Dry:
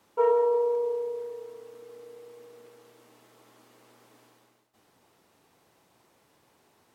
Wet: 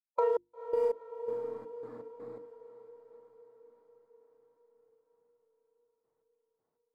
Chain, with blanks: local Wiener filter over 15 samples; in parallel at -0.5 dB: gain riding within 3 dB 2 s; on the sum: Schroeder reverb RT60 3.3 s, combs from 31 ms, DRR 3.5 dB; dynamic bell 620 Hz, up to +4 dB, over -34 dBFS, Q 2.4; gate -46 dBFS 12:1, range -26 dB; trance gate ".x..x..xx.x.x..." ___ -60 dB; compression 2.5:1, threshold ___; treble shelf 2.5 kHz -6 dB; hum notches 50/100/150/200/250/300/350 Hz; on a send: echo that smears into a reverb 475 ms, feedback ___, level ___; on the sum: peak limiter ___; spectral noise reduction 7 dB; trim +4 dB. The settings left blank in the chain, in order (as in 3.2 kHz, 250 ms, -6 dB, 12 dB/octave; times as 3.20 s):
82 bpm, -23 dBFS, 62%, -13 dB, -18 dBFS